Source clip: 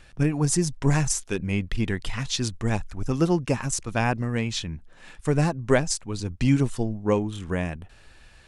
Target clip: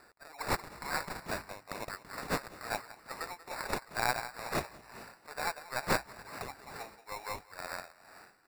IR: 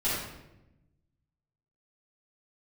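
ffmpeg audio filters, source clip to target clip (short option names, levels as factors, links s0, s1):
-filter_complex "[0:a]highpass=f=800:w=0.5412,highpass=f=800:w=1.3066,asplit=2[s0][s1];[s1]adelay=184,lowpass=f=2900:p=1,volume=0.668,asplit=2[s2][s3];[s3]adelay=184,lowpass=f=2900:p=1,volume=0.32,asplit=2[s4][s5];[s5]adelay=184,lowpass=f=2900:p=1,volume=0.32,asplit=2[s6][s7];[s7]adelay=184,lowpass=f=2900:p=1,volume=0.32[s8];[s2][s4][s6][s8]amix=inputs=4:normalize=0[s9];[s0][s9]amix=inputs=2:normalize=0,acrusher=samples=14:mix=1:aa=0.000001,aeval=exprs='0.266*(cos(1*acos(clip(val(0)/0.266,-1,1)))-cos(1*PI/2))+0.0376*(cos(4*acos(clip(val(0)/0.266,-1,1)))-cos(4*PI/2))':c=same,asplit=2[s10][s11];[s11]asplit=7[s12][s13][s14][s15][s16][s17][s18];[s12]adelay=216,afreqshift=53,volume=0.178[s19];[s13]adelay=432,afreqshift=106,volume=0.114[s20];[s14]adelay=648,afreqshift=159,volume=0.0724[s21];[s15]adelay=864,afreqshift=212,volume=0.0468[s22];[s16]adelay=1080,afreqshift=265,volume=0.0299[s23];[s17]adelay=1296,afreqshift=318,volume=0.0191[s24];[s18]adelay=1512,afreqshift=371,volume=0.0122[s25];[s19][s20][s21][s22][s23][s24][s25]amix=inputs=7:normalize=0[s26];[s10][s26]amix=inputs=2:normalize=0,tremolo=f=2.2:d=0.8,volume=0.75"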